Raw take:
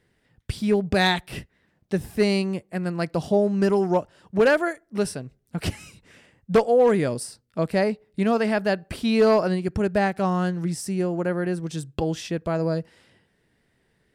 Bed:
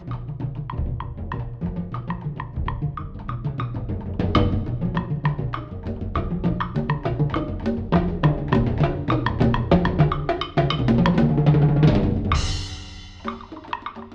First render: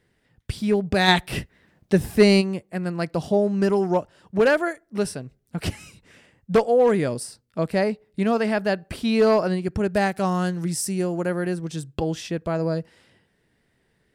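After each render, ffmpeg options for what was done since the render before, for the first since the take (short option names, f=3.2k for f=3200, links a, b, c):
-filter_complex "[0:a]asplit=3[a][b][c];[a]afade=t=out:st=1.07:d=0.02[d];[b]acontrast=63,afade=t=in:st=1.07:d=0.02,afade=t=out:st=2.4:d=0.02[e];[c]afade=t=in:st=2.4:d=0.02[f];[d][e][f]amix=inputs=3:normalize=0,asettb=1/sr,asplit=3[g][h][i];[g]atrim=end=9.944[j];[h]atrim=start=9.94:end=11.54,asetpts=PTS-STARTPTS,afade=t=in:d=0.004:c=qsin,afade=t=out:st=1.596:d=0.004:c=qsin,highshelf=f=5.1k:g=10[k];[i]atrim=start=11.536[l];[j][k]acrossfade=d=0.004:c1=hsin:c2=qsin[m];[m][l]acrossfade=d=0.004:c1=qsin:c2=hsin"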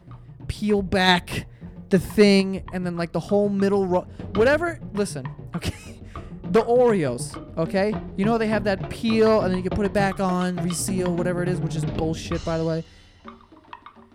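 -filter_complex "[1:a]volume=-12dB[a];[0:a][a]amix=inputs=2:normalize=0"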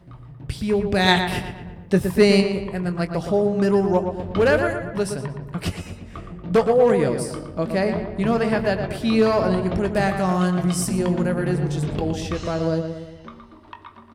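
-filter_complex "[0:a]asplit=2[a][b];[b]adelay=22,volume=-12dB[c];[a][c]amix=inputs=2:normalize=0,asplit=2[d][e];[e]adelay=117,lowpass=f=3k:p=1,volume=-7dB,asplit=2[f][g];[g]adelay=117,lowpass=f=3k:p=1,volume=0.52,asplit=2[h][i];[i]adelay=117,lowpass=f=3k:p=1,volume=0.52,asplit=2[j][k];[k]adelay=117,lowpass=f=3k:p=1,volume=0.52,asplit=2[l][m];[m]adelay=117,lowpass=f=3k:p=1,volume=0.52,asplit=2[n][o];[o]adelay=117,lowpass=f=3k:p=1,volume=0.52[p];[d][f][h][j][l][n][p]amix=inputs=7:normalize=0"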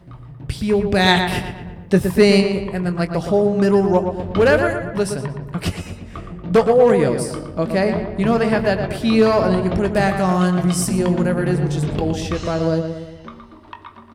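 -af "volume=3.5dB,alimiter=limit=-3dB:level=0:latency=1"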